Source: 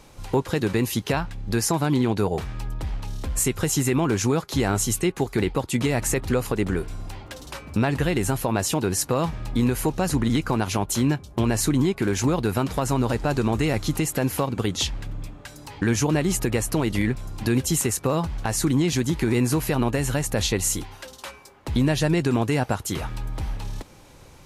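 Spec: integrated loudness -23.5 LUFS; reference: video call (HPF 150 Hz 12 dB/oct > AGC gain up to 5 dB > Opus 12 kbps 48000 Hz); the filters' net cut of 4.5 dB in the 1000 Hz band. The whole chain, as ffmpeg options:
-af "highpass=150,equalizer=f=1k:t=o:g=-6,dynaudnorm=m=5dB,volume=0.5dB" -ar 48000 -c:a libopus -b:a 12k

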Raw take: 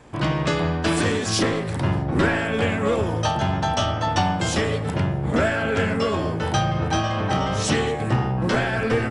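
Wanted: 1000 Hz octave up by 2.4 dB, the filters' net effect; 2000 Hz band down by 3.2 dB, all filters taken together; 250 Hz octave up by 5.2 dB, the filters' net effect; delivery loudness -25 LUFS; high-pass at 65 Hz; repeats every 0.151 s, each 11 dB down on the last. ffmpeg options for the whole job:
-af "highpass=65,equalizer=f=250:t=o:g=7,equalizer=f=1k:t=o:g=4,equalizer=f=2k:t=o:g=-6,aecho=1:1:151|302|453:0.282|0.0789|0.0221,volume=-5dB"

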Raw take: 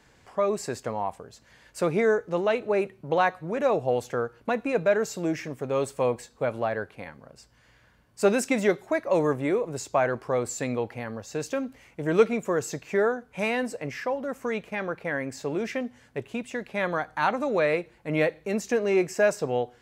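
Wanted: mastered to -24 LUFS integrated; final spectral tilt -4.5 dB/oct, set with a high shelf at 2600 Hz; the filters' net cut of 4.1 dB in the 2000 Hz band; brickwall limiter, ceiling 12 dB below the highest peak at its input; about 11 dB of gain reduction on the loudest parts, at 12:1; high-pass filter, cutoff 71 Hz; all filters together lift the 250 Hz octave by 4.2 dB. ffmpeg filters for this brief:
-af "highpass=71,equalizer=f=250:t=o:g=5.5,equalizer=f=2k:t=o:g=-8.5,highshelf=f=2.6k:g=7,acompressor=threshold=-23dB:ratio=12,volume=11dB,alimiter=limit=-14.5dB:level=0:latency=1"

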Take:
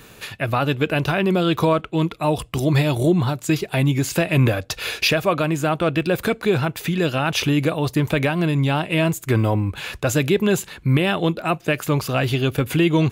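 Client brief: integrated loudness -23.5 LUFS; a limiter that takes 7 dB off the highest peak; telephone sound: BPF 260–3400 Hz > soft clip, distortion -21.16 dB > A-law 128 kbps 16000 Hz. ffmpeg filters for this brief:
-af "alimiter=limit=-15dB:level=0:latency=1,highpass=260,lowpass=3.4k,asoftclip=threshold=-16dB,volume=5dB" -ar 16000 -c:a pcm_alaw

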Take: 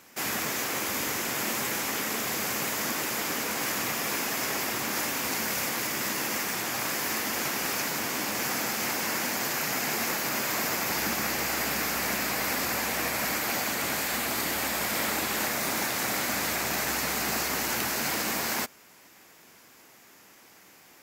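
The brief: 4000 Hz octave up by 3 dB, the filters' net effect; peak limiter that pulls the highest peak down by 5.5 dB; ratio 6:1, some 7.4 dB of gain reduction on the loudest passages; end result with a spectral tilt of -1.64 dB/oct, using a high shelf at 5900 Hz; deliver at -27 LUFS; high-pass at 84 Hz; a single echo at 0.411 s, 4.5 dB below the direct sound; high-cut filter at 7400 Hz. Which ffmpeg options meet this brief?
-af "highpass=84,lowpass=7.4k,equalizer=f=4k:t=o:g=7,highshelf=f=5.9k:g=-6.5,acompressor=threshold=-34dB:ratio=6,alimiter=level_in=4.5dB:limit=-24dB:level=0:latency=1,volume=-4.5dB,aecho=1:1:411:0.596,volume=8.5dB"

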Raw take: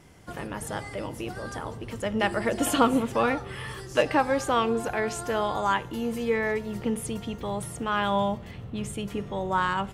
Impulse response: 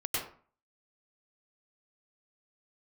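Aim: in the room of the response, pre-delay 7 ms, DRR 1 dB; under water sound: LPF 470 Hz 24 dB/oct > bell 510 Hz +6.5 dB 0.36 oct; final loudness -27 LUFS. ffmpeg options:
-filter_complex "[0:a]asplit=2[a][b];[1:a]atrim=start_sample=2205,adelay=7[c];[b][c]afir=irnorm=-1:irlink=0,volume=-7dB[d];[a][d]amix=inputs=2:normalize=0,lowpass=f=470:w=0.5412,lowpass=f=470:w=1.3066,equalizer=f=510:t=o:w=0.36:g=6.5,volume=1.5dB"

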